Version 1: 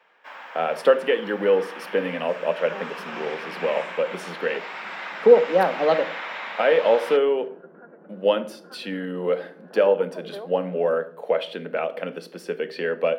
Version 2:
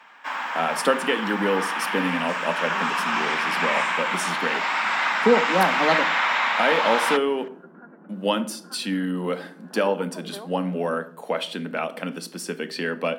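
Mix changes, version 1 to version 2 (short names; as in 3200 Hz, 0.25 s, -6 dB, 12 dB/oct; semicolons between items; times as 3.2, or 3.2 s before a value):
speech: add tone controls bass +2 dB, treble +9 dB; first sound +9.5 dB; master: add graphic EQ 250/500/1000/8000 Hz +8/-9/+5/+8 dB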